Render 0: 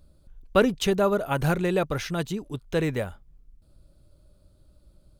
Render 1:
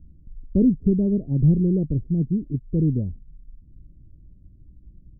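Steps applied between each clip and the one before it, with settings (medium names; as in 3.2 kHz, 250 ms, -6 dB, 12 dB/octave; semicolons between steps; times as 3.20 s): inverse Chebyshev low-pass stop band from 1.3 kHz, stop band 70 dB; trim +9 dB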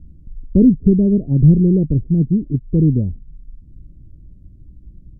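low-pass that closes with the level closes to 630 Hz, closed at -18.5 dBFS; trim +7 dB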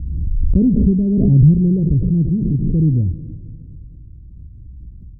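peaking EQ 74 Hz +14.5 dB 2.4 oct; on a send at -15 dB: reverberation RT60 2.2 s, pre-delay 61 ms; on the sum: swell ahead of each attack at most 25 dB/s; trim -9 dB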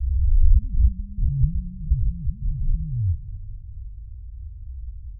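inverse Chebyshev low-pass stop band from 520 Hz, stop band 80 dB; trim +2 dB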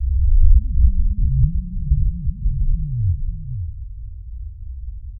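delay 544 ms -8 dB; warped record 78 rpm, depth 100 cents; trim +3.5 dB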